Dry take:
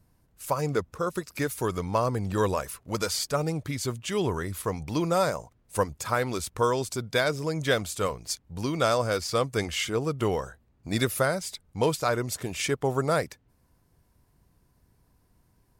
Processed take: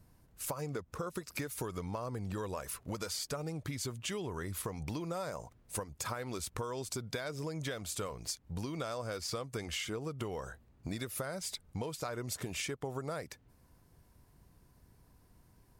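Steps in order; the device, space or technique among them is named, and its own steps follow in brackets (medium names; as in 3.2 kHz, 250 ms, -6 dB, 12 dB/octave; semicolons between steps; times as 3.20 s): serial compression, peaks first (compression, threshold -31 dBFS, peak gain reduction 12 dB; compression 3:1, threshold -38 dBFS, peak gain reduction 8 dB); trim +1.5 dB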